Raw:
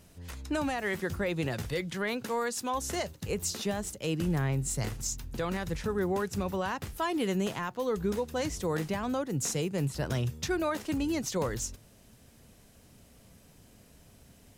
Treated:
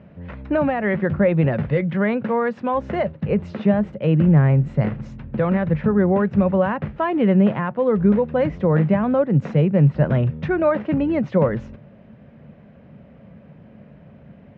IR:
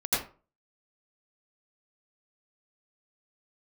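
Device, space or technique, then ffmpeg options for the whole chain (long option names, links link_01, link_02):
bass cabinet: -af "highpass=68,equalizer=frequency=150:width_type=q:width=4:gain=10,equalizer=frequency=210:width_type=q:width=4:gain=9,equalizer=frequency=570:width_type=q:width=4:gain=9,lowpass=frequency=2300:width=0.5412,lowpass=frequency=2300:width=1.3066,volume=8dB"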